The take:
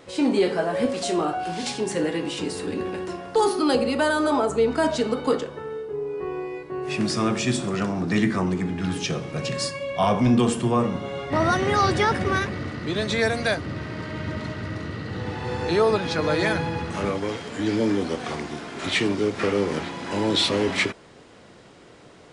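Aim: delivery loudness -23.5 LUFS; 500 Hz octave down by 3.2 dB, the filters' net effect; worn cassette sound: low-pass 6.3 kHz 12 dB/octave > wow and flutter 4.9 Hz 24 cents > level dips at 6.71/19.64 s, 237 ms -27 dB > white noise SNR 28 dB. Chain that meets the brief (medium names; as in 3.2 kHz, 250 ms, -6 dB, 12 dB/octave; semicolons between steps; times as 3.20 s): low-pass 6.3 kHz 12 dB/octave; peaking EQ 500 Hz -4 dB; wow and flutter 4.9 Hz 24 cents; level dips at 6.71/19.64 s, 237 ms -27 dB; white noise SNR 28 dB; trim +2.5 dB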